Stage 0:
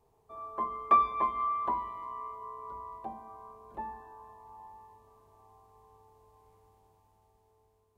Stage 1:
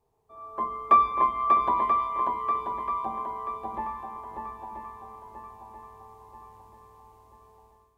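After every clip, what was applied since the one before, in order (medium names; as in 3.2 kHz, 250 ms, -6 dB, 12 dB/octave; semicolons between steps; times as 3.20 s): shuffle delay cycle 984 ms, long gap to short 1.5:1, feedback 41%, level -4 dB; level rider gain up to 10 dB; trim -4.5 dB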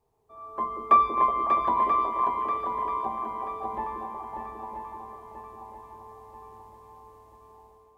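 repeats whose band climbs or falls 184 ms, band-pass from 330 Hz, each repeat 0.7 oct, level -0.5 dB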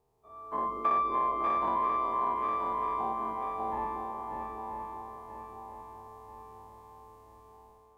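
every event in the spectrogram widened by 120 ms; compression 3:1, threshold -22 dBFS, peak gain reduction 8 dB; trim -5 dB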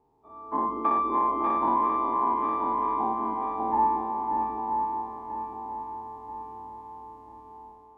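low-pass 3.1 kHz 6 dB/octave; small resonant body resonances 280/870 Hz, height 14 dB, ringing for 30 ms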